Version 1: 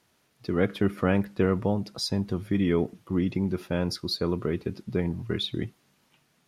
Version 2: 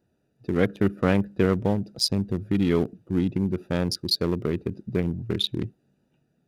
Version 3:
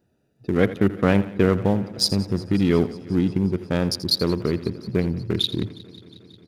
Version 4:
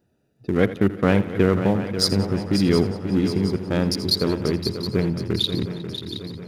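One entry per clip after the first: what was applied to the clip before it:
local Wiener filter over 41 samples; treble shelf 4.3 kHz +12 dB; trim +2.5 dB
delay 83 ms -14.5 dB; modulated delay 180 ms, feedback 78%, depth 72 cents, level -21 dB; trim +3 dB
shuffle delay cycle 719 ms, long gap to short 3:1, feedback 50%, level -10 dB

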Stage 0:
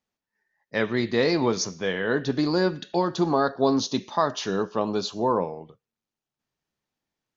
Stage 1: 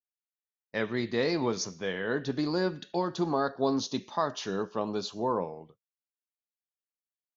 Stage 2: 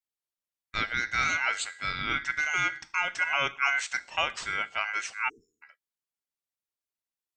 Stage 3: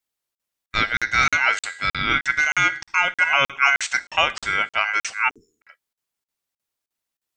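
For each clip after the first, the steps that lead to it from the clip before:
expander -42 dBFS; trim -6 dB
ring modulator 1.8 kHz; spectral selection erased 5.29–5.63 s, 470–5200 Hz; trim +3.5 dB
crackling interface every 0.31 s, samples 2048, zero, from 0.35 s; trim +9 dB

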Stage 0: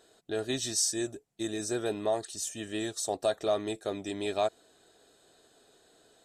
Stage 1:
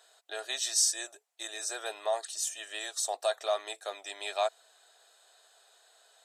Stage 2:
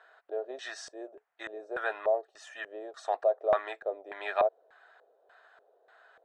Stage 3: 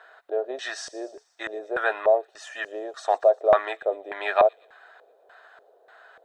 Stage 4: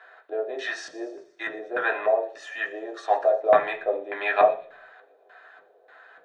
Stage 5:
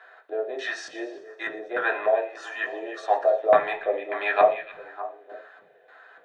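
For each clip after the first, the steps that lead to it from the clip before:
high-pass 670 Hz 24 dB/octave; trim +2.5 dB
LFO low-pass square 1.7 Hz 490–1600 Hz; trim +3 dB
feedback echo behind a high-pass 118 ms, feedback 57%, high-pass 4.3 kHz, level -15.5 dB; trim +8 dB
reverberation RT60 0.50 s, pre-delay 3 ms, DRR 1 dB; trim -6.5 dB
repeats whose band climbs or falls 302 ms, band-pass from 2.6 kHz, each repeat -1.4 oct, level -9.5 dB

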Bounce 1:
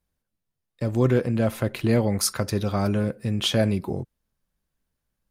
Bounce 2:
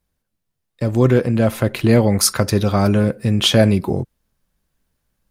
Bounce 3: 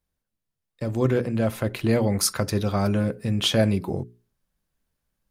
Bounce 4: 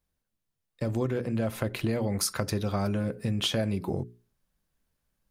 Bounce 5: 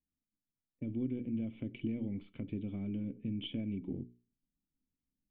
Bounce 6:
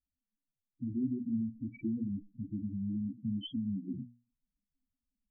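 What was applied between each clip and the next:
gain riding 2 s; trim +8 dB
hum notches 60/120/180/240/300/360/420 Hz; trim -7 dB
compression, threshold -25 dBFS, peak gain reduction 9.5 dB
partial rectifier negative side -3 dB; level-controlled noise filter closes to 800 Hz; cascade formant filter i; trim +1 dB
loudest bins only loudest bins 4; trim +3.5 dB

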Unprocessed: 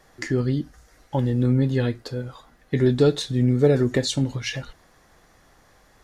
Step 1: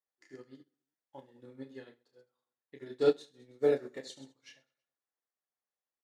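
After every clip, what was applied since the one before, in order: high-pass 340 Hz 12 dB/octave; on a send: reverse bouncing-ball echo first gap 30 ms, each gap 1.4×, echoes 5; on the sum: upward expansion 2.5:1, over -38 dBFS; trim -6.5 dB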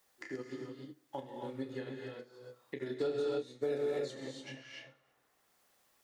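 gated-style reverb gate 320 ms rising, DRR 2.5 dB; peak limiter -25.5 dBFS, peak gain reduction 11.5 dB; three bands compressed up and down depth 70%; trim +1.5 dB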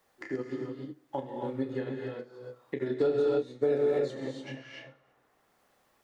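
treble shelf 2.6 kHz -12 dB; trim +8 dB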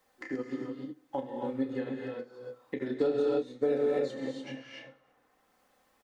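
comb 3.9 ms, depth 41%; trim -1 dB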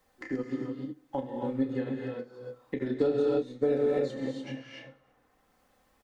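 bass shelf 150 Hz +12 dB

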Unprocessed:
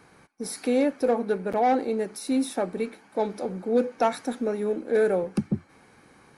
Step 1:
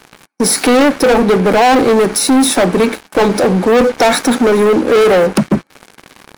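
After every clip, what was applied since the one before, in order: high-pass 150 Hz 24 dB/octave; waveshaping leveller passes 5; in parallel at -1 dB: compression, threshold -25 dBFS, peak gain reduction 10.5 dB; on the sum: trim +3.5 dB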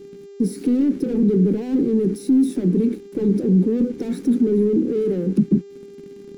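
peak limiter -15 dBFS, peak gain reduction 9 dB; mains buzz 400 Hz, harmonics 19, -37 dBFS -4 dB/octave; FFT filter 120 Hz 0 dB, 180 Hz +12 dB, 410 Hz +6 dB, 640 Hz -20 dB, 1.2 kHz -21 dB, 1.9 kHz -17 dB, 15 kHz -12 dB; trim -6 dB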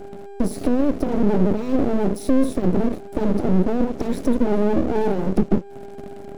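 in parallel at +2.5 dB: compression, threshold -24 dBFS, peak gain reduction 12 dB; on the sum: half-wave rectifier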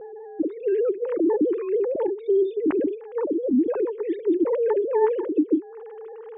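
formants replaced by sine waves; distance through air 210 m; trim -4 dB

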